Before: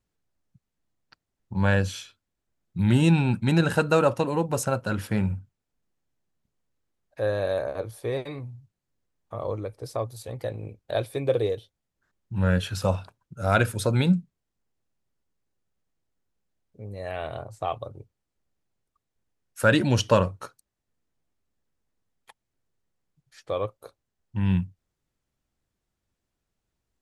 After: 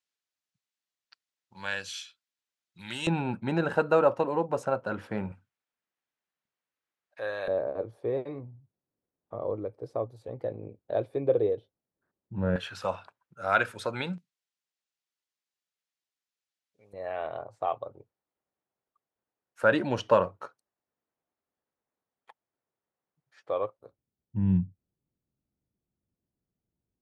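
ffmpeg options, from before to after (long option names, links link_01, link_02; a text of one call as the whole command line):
ffmpeg -i in.wav -af "asetnsamples=nb_out_samples=441:pad=0,asendcmd='3.07 bandpass f 710;5.32 bandpass f 1900;7.48 bandpass f 390;12.56 bandpass f 1400;14.18 bandpass f 4000;16.93 bandpass f 790;23.79 bandpass f 190',bandpass=frequency=4000:width_type=q:width=0.73:csg=0" out.wav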